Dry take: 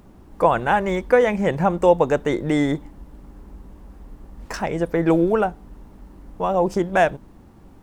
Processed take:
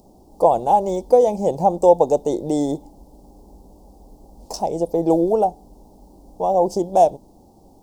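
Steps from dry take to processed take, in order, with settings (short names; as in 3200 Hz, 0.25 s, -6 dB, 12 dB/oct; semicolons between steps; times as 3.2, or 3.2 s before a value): EQ curve 130 Hz 0 dB, 820 Hz +12 dB, 1600 Hz -27 dB, 4800 Hz +11 dB; gain -6.5 dB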